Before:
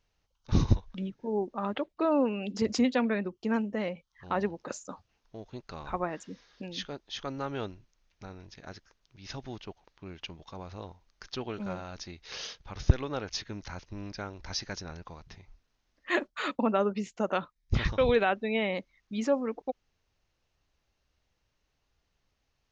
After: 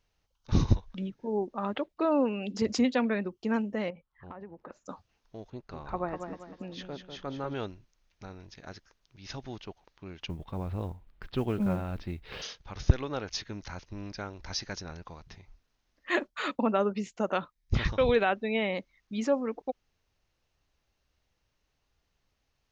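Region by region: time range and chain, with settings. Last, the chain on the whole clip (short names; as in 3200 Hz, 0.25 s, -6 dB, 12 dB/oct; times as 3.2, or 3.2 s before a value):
3.9–4.86 LPF 1700 Hz + compressor 10:1, threshold -40 dBFS
5.5–7.54 high shelf 2200 Hz -10.5 dB + feedback echo 0.196 s, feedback 39%, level -7 dB
10.28–12.42 LPF 3400 Hz 24 dB/oct + modulation noise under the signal 26 dB + low shelf 360 Hz +12 dB
whole clip: dry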